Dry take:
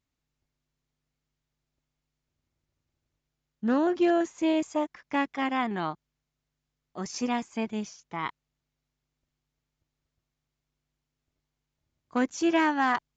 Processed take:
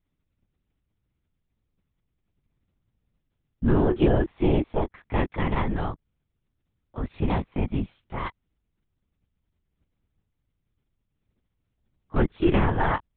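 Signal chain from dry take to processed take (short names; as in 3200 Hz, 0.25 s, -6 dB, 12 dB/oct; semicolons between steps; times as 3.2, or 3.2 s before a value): low shelf 270 Hz +10.5 dB; LPC vocoder at 8 kHz whisper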